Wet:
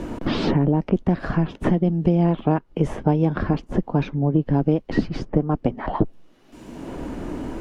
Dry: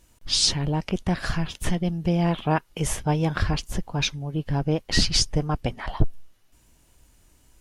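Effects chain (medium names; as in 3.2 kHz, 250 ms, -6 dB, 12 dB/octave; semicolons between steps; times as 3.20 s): FFT filter 100 Hz 0 dB, 270 Hz +13 dB, 1.2 kHz +2 dB, 12 kHz -24 dB; three bands compressed up and down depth 100%; trim -3 dB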